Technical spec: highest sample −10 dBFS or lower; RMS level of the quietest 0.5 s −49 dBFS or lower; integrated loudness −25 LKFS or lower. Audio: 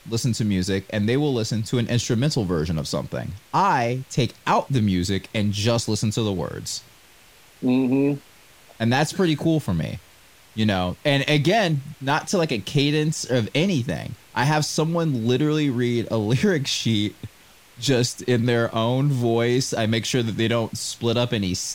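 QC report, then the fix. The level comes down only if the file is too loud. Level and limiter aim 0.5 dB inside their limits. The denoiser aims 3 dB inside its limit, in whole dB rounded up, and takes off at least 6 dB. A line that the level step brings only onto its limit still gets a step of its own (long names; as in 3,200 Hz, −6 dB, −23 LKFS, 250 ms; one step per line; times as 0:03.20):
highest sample −6.5 dBFS: out of spec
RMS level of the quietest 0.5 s −51 dBFS: in spec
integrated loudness −22.5 LKFS: out of spec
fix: level −3 dB
brickwall limiter −10.5 dBFS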